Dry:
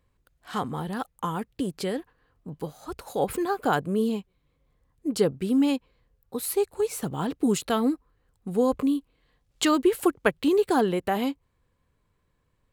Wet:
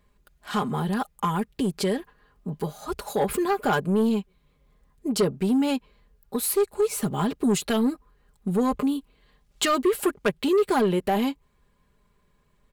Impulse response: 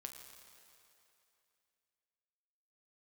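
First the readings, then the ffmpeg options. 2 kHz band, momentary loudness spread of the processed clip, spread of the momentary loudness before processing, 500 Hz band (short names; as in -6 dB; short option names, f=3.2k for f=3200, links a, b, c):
+1.0 dB, 10 LU, 13 LU, +1.0 dB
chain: -filter_complex "[0:a]aecho=1:1:4.9:0.64,asplit=2[a][b];[b]acompressor=threshold=-28dB:ratio=6,volume=-2.5dB[c];[a][c]amix=inputs=2:normalize=0,asoftclip=type=tanh:threshold=-15.5dB"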